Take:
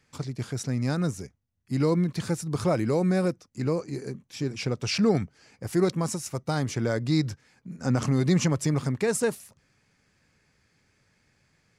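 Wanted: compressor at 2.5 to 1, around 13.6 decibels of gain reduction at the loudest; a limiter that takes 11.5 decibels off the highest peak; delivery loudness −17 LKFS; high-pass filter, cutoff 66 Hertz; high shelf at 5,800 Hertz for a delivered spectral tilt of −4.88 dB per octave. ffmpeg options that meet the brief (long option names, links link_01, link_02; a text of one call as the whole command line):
ffmpeg -i in.wav -af "highpass=66,highshelf=frequency=5800:gain=6,acompressor=threshold=-40dB:ratio=2.5,volume=27dB,alimiter=limit=-7.5dB:level=0:latency=1" out.wav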